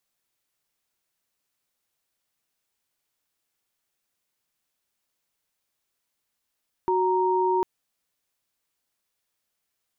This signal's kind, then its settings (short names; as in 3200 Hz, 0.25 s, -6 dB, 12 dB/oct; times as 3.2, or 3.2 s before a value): chord F#4/A#5 sine, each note -22.5 dBFS 0.75 s